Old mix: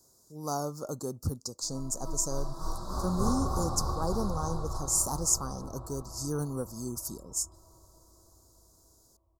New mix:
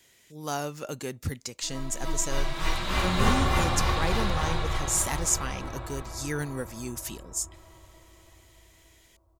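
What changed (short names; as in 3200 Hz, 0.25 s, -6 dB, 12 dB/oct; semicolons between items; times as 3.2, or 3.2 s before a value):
background +6.0 dB; master: remove elliptic band-stop 1200–4800 Hz, stop band 60 dB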